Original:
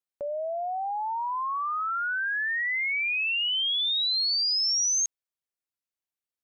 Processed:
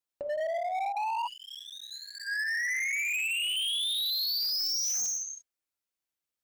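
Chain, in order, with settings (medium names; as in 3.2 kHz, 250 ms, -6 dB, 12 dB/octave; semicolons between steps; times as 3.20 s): 3.42–4.27 s: bass shelf 430 Hz -10.5 dB; gated-style reverb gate 370 ms falling, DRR 2 dB; hard clipper -29 dBFS, distortion -7 dB; 1.27–2.66 s: spectral selection erased 330–1600 Hz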